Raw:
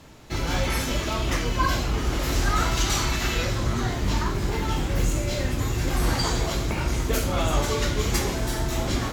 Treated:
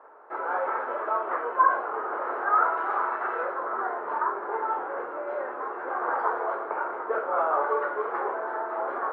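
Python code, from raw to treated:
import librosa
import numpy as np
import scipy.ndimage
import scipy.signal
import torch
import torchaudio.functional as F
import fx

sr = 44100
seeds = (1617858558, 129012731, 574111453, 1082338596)

y = scipy.signal.sosfilt(scipy.signal.ellip(3, 1.0, 70, [420.0, 1500.0], 'bandpass', fs=sr, output='sos'), x)
y = fx.peak_eq(y, sr, hz=1100.0, db=7.0, octaves=1.2)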